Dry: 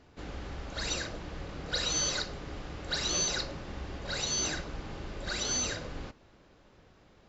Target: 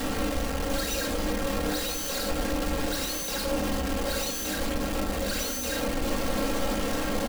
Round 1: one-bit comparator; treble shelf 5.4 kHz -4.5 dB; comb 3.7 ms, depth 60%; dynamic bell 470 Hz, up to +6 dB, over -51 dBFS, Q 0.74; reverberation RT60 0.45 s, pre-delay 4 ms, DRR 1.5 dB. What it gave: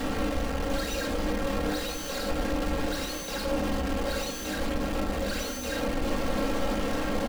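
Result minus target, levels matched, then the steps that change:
8 kHz band -4.5 dB
change: treble shelf 5.4 kHz +5 dB

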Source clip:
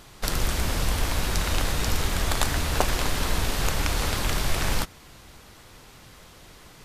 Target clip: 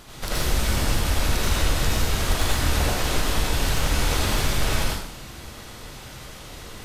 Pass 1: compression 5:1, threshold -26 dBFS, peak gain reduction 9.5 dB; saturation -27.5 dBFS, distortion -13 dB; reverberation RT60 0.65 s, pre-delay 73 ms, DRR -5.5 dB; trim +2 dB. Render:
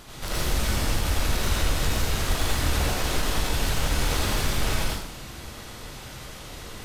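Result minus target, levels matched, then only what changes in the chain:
saturation: distortion +9 dB
change: saturation -20 dBFS, distortion -22 dB

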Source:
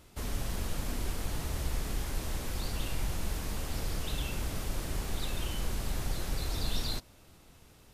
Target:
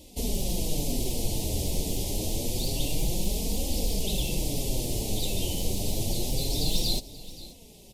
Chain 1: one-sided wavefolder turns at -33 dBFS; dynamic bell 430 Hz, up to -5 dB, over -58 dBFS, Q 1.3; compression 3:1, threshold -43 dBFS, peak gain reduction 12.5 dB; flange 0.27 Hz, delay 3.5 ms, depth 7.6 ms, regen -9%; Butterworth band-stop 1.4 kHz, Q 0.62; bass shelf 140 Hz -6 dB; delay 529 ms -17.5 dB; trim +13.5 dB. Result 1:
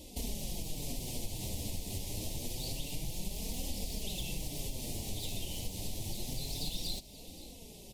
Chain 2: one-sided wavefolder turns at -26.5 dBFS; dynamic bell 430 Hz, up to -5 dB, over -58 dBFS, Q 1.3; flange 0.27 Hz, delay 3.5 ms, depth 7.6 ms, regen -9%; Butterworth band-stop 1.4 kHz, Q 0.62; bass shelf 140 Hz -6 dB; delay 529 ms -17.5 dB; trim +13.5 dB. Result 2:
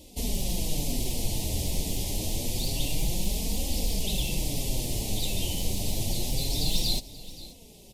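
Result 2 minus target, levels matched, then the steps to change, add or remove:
500 Hz band -3.5 dB
change: dynamic bell 1.7 kHz, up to -5 dB, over -58 dBFS, Q 1.3

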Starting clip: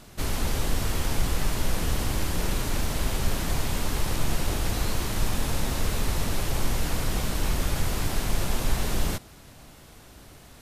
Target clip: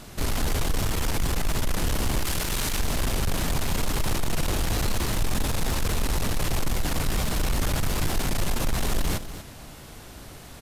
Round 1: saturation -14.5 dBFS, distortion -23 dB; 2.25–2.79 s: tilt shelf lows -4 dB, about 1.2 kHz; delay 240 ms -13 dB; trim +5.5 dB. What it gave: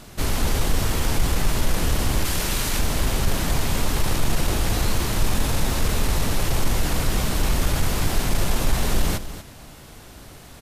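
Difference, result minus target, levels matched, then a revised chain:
saturation: distortion -12 dB
saturation -25 dBFS, distortion -10 dB; 2.25–2.79 s: tilt shelf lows -4 dB, about 1.2 kHz; delay 240 ms -13 dB; trim +5.5 dB

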